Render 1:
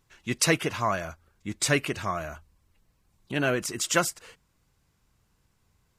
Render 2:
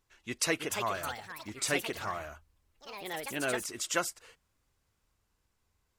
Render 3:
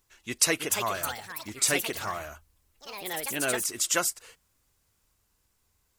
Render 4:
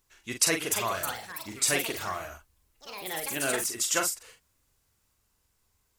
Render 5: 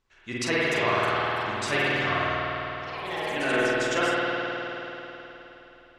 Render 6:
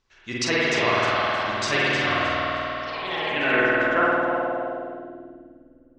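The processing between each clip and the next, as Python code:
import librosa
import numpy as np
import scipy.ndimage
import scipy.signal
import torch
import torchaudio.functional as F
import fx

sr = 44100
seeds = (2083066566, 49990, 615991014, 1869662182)

y1 = fx.peak_eq(x, sr, hz=150.0, db=-9.5, octaves=0.96)
y1 = fx.echo_pitch(y1, sr, ms=385, semitones=4, count=3, db_per_echo=-6.0)
y1 = F.gain(torch.from_numpy(y1), -6.5).numpy()
y2 = fx.high_shelf(y1, sr, hz=6000.0, db=11.0)
y2 = F.gain(torch.from_numpy(y2), 2.5).numpy()
y3 = fx.doubler(y2, sr, ms=43.0, db=-6)
y3 = F.gain(torch.from_numpy(y3), -1.5).numpy()
y4 = scipy.signal.sosfilt(scipy.signal.butter(2, 3700.0, 'lowpass', fs=sr, output='sos'), y3)
y4 = fx.rev_spring(y4, sr, rt60_s=3.7, pass_ms=(51,), chirp_ms=65, drr_db=-7.5)
y5 = fx.filter_sweep_lowpass(y4, sr, from_hz=5700.0, to_hz=300.0, start_s=2.75, end_s=5.35, q=1.8)
y5 = fx.echo_feedback(y5, sr, ms=310, feedback_pct=29, wet_db=-10.0)
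y5 = F.gain(torch.from_numpy(y5), 2.0).numpy()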